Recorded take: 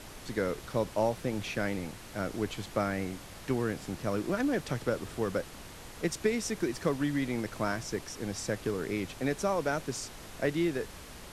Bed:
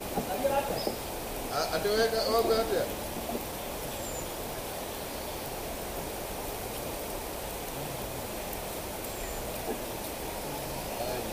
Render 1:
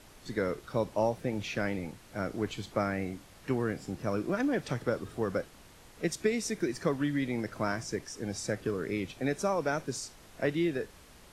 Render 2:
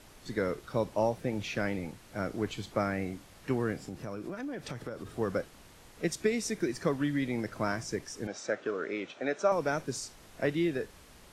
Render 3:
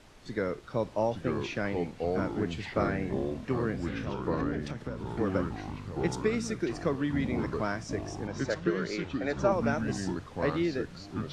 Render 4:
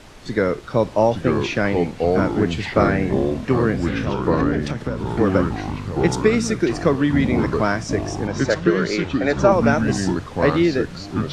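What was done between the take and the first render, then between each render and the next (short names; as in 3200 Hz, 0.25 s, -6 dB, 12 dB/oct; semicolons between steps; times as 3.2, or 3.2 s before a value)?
noise print and reduce 8 dB
3.75–5.18 compressor 5:1, threshold -35 dBFS; 8.27–9.52 speaker cabinet 320–6200 Hz, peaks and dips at 610 Hz +6 dB, 1400 Hz +7 dB, 4800 Hz -7 dB
air absorption 62 m; echoes that change speed 0.79 s, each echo -4 st, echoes 3
gain +12 dB; limiter -3 dBFS, peak gain reduction 1.5 dB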